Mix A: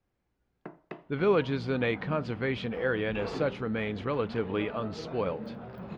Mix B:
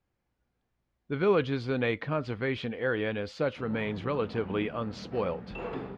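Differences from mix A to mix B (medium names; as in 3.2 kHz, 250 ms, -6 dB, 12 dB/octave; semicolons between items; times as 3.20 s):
first sound: muted; second sound: entry +2.40 s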